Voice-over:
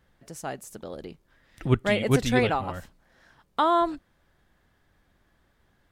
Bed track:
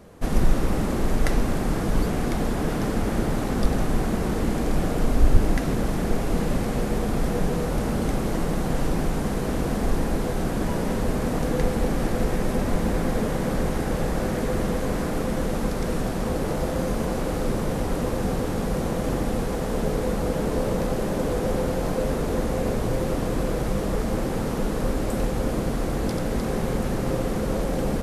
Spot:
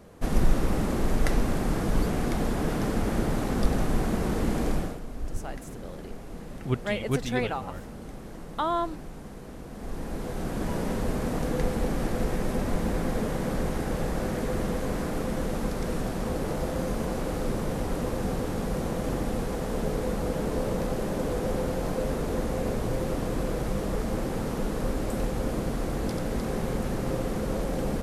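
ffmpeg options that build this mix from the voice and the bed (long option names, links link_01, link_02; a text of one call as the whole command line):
ffmpeg -i stem1.wav -i stem2.wav -filter_complex "[0:a]adelay=5000,volume=-5.5dB[link_01];[1:a]volume=10dB,afade=type=out:start_time=4.68:duration=0.32:silence=0.199526,afade=type=in:start_time=9.71:duration=1.05:silence=0.237137[link_02];[link_01][link_02]amix=inputs=2:normalize=0" out.wav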